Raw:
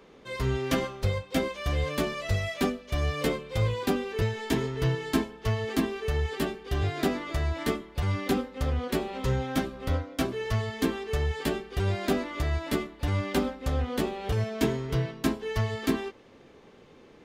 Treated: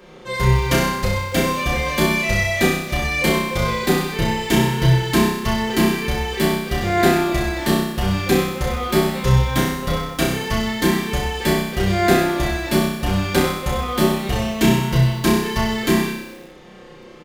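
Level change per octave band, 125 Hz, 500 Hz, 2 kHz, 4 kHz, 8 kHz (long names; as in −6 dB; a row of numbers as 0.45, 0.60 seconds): +8.5, +9.0, +13.0, +12.5, +14.5 decibels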